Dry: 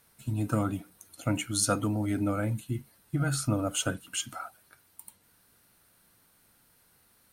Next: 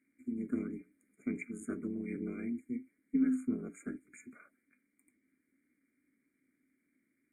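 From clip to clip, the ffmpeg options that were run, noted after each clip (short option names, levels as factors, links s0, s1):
-filter_complex "[0:a]afftfilt=real='re*(1-between(b*sr/4096,2300,6700))':imag='im*(1-between(b*sr/4096,2300,6700))':win_size=4096:overlap=0.75,aeval=exprs='val(0)*sin(2*PI*120*n/s)':c=same,asplit=3[s0][s1][s2];[s0]bandpass=f=270:t=q:w=8,volume=1[s3];[s1]bandpass=f=2290:t=q:w=8,volume=0.501[s4];[s2]bandpass=f=3010:t=q:w=8,volume=0.355[s5];[s3][s4][s5]amix=inputs=3:normalize=0,volume=2.37"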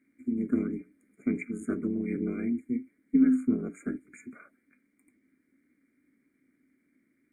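-af "highshelf=f=2600:g=-8,volume=2.51"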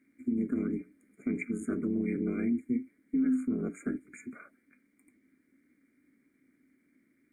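-af "alimiter=limit=0.0668:level=0:latency=1:release=84,volume=1.19"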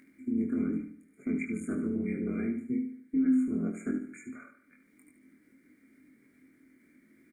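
-filter_complex "[0:a]acompressor=mode=upward:threshold=0.00251:ratio=2.5,asplit=2[s0][s1];[s1]adelay=23,volume=0.631[s2];[s0][s2]amix=inputs=2:normalize=0,asplit=2[s3][s4];[s4]aecho=0:1:74|148|222|296:0.355|0.142|0.0568|0.0227[s5];[s3][s5]amix=inputs=2:normalize=0,volume=0.794"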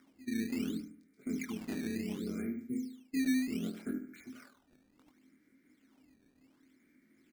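-af "acrusher=samples=12:mix=1:aa=0.000001:lfo=1:lforange=19.2:lforate=0.68,volume=0.531"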